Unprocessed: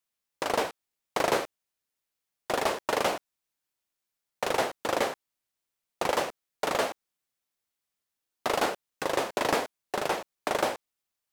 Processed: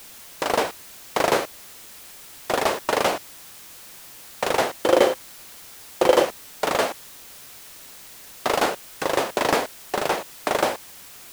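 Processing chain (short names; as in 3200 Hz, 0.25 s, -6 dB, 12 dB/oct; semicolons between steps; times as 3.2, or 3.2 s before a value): 4.74–6.25 small resonant body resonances 360/510/3100 Hz, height 11 dB; added noise white -49 dBFS; gain +5.5 dB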